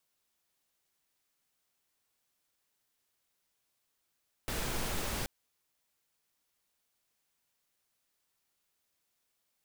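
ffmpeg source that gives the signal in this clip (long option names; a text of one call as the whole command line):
ffmpeg -f lavfi -i "anoisesrc=color=pink:amplitude=0.0912:duration=0.78:sample_rate=44100:seed=1" out.wav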